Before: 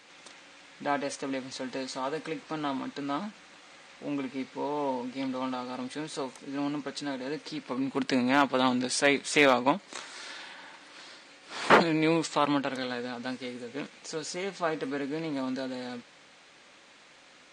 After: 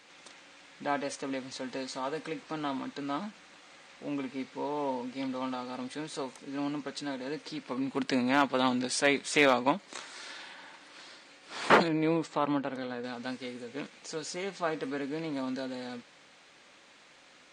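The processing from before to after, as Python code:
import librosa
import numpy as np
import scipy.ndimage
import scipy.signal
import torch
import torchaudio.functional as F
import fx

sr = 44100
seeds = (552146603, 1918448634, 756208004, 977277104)

y = fx.high_shelf(x, sr, hz=2200.0, db=-11.5, at=(11.88, 13.04))
y = y * 10.0 ** (-2.0 / 20.0)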